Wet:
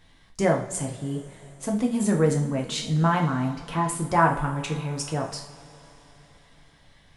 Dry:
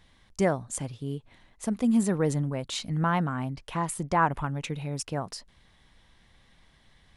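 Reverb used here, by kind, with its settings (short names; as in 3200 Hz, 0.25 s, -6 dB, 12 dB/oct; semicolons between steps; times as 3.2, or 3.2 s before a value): two-slope reverb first 0.45 s, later 4.1 s, from -21 dB, DRR 0.5 dB; gain +1 dB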